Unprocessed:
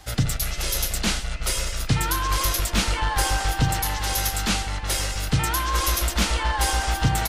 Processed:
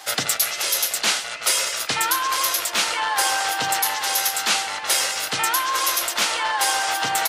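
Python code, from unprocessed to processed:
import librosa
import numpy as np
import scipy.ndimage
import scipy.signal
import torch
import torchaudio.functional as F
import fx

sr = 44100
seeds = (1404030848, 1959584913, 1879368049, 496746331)

y = scipy.signal.sosfilt(scipy.signal.butter(2, 590.0, 'highpass', fs=sr, output='sos'), x)
y = fx.rider(y, sr, range_db=10, speed_s=0.5)
y = F.gain(torch.from_numpy(y), 5.0).numpy()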